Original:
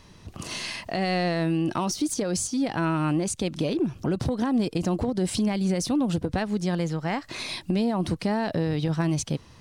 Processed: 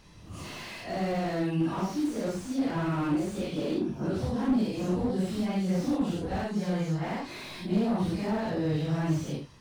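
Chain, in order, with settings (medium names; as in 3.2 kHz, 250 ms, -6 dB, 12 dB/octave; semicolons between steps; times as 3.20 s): phase randomisation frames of 200 ms; slew-rate limiter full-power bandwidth 37 Hz; trim -3 dB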